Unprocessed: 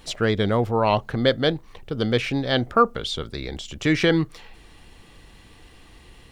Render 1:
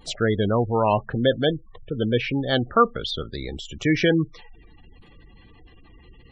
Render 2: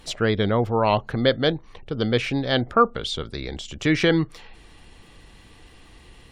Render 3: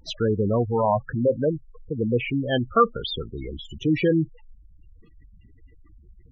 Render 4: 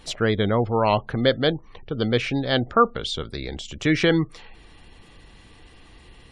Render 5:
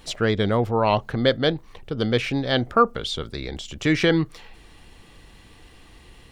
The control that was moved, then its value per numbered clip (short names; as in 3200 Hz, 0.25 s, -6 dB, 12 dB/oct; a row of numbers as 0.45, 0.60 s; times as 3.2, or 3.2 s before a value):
spectral gate, under each frame's peak: -20, -45, -10, -35, -60 dB